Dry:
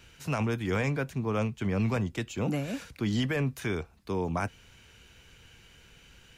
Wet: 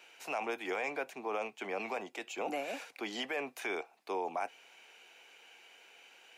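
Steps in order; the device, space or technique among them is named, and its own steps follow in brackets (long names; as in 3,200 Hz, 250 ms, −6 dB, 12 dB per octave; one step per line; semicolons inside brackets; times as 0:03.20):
laptop speaker (high-pass filter 340 Hz 24 dB per octave; parametric band 760 Hz +12 dB 0.6 octaves; parametric band 2,400 Hz +7 dB 0.5 octaves; brickwall limiter −21.5 dBFS, peak gain reduction 8 dB)
level −4.5 dB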